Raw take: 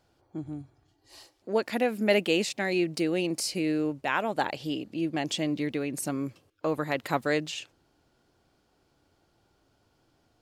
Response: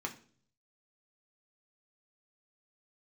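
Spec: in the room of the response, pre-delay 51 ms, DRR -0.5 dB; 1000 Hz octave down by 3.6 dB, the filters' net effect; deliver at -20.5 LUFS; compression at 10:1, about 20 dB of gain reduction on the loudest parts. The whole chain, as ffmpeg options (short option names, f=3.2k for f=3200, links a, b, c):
-filter_complex "[0:a]equalizer=f=1k:t=o:g=-5,acompressor=threshold=-41dB:ratio=10,asplit=2[a][b];[1:a]atrim=start_sample=2205,adelay=51[c];[b][c]afir=irnorm=-1:irlink=0,volume=-1.5dB[d];[a][d]amix=inputs=2:normalize=0,volume=21.5dB"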